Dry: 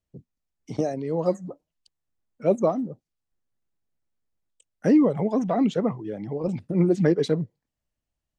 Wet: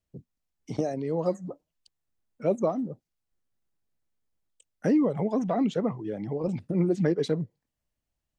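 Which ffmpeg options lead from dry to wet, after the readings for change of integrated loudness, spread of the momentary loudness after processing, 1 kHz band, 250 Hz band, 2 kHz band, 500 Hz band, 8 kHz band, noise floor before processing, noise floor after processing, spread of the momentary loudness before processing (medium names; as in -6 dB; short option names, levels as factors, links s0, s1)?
-4.0 dB, 13 LU, -3.5 dB, -4.0 dB, -3.5 dB, -3.5 dB, no reading, under -85 dBFS, -85 dBFS, 14 LU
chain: -af "acompressor=threshold=0.0398:ratio=1.5"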